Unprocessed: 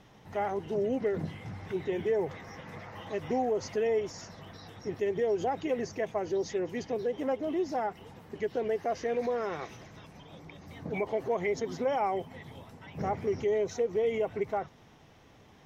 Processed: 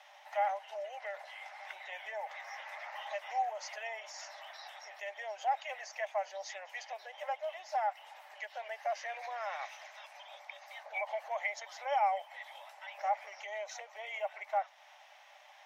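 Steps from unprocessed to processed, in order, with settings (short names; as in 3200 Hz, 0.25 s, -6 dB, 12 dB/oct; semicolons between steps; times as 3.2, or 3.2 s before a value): in parallel at -1.5 dB: compressor, threshold -44 dBFS, peak gain reduction 18 dB; on the sum: rippled Chebyshev high-pass 570 Hz, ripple 6 dB; gain +1 dB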